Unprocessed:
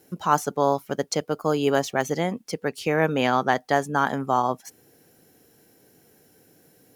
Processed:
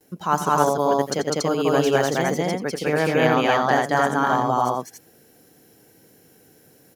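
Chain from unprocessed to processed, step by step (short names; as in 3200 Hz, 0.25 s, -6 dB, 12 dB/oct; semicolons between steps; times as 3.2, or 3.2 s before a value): gate with hold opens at -50 dBFS; on a send: loudspeakers at several distances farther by 30 m -12 dB, 69 m 0 dB, 97 m -1 dB; on the sum: gain -1 dB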